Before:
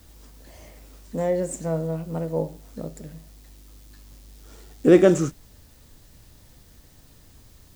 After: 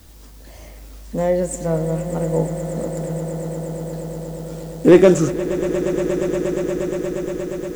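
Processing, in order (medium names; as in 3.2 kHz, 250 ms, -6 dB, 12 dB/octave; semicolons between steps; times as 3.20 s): hard clipper -7 dBFS, distortion -20 dB; echo with a slow build-up 118 ms, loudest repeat 8, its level -15 dB; trim +5 dB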